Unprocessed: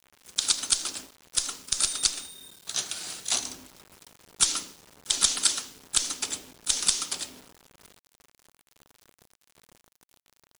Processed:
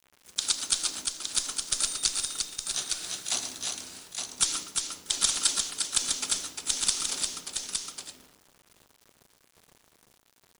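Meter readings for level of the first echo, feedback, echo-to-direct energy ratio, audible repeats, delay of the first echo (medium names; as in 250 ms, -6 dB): -12.0 dB, no regular repeats, -1.5 dB, 3, 115 ms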